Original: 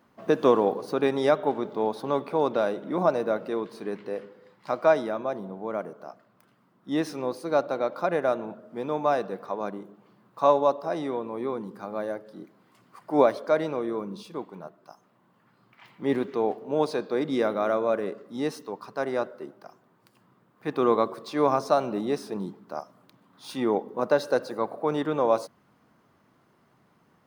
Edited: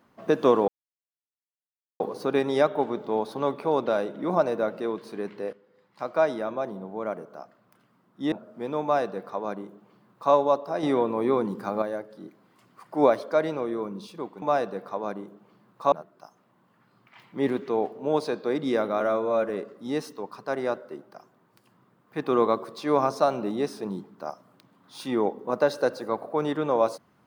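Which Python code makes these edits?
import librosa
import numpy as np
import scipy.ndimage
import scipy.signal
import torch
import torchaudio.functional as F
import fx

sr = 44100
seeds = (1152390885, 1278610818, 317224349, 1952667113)

y = fx.edit(x, sr, fx.insert_silence(at_s=0.68, length_s=1.32),
    fx.fade_in_from(start_s=4.21, length_s=0.97, floor_db=-14.0),
    fx.cut(start_s=7.0, length_s=1.48),
    fx.duplicate(start_s=8.99, length_s=1.5, to_s=14.58),
    fx.clip_gain(start_s=10.99, length_s=0.99, db=7.0),
    fx.stretch_span(start_s=17.66, length_s=0.33, factor=1.5), tone=tone)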